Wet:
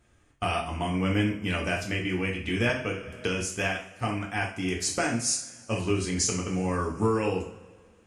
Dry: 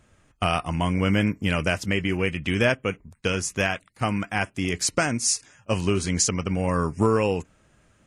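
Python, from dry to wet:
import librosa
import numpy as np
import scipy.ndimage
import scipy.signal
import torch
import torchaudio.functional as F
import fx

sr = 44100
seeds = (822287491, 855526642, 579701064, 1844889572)

y = fx.rev_double_slope(x, sr, seeds[0], early_s=0.41, late_s=1.8, knee_db=-19, drr_db=-1.5)
y = fx.band_squash(y, sr, depth_pct=70, at=(2.69, 3.41))
y = F.gain(torch.from_numpy(y), -7.5).numpy()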